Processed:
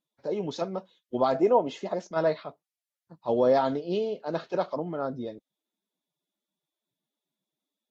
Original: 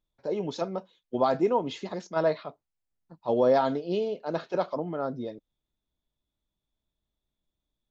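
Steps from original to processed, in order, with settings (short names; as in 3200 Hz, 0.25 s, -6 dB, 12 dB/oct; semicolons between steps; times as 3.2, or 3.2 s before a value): 1.34–2.11 fifteen-band EQ 100 Hz -11 dB, 630 Hz +10 dB, 4000 Hz -5 dB; Vorbis 48 kbps 48000 Hz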